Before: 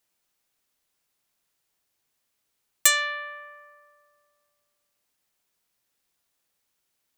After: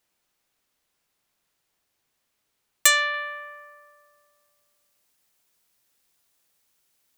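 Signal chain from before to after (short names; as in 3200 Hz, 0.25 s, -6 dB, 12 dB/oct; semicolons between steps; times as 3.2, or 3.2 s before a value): high shelf 4800 Hz -5 dB, from 3.14 s +3.5 dB; gain +4 dB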